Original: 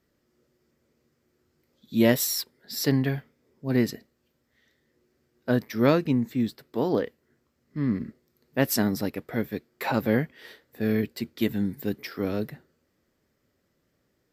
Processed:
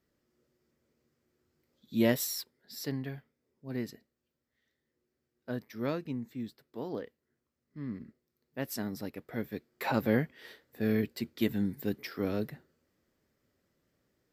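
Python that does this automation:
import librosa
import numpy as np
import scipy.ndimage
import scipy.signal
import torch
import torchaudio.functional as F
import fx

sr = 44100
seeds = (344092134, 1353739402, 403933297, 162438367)

y = fx.gain(x, sr, db=fx.line((2.04, -6.0), (2.97, -13.0), (8.71, -13.0), (9.91, -4.0)))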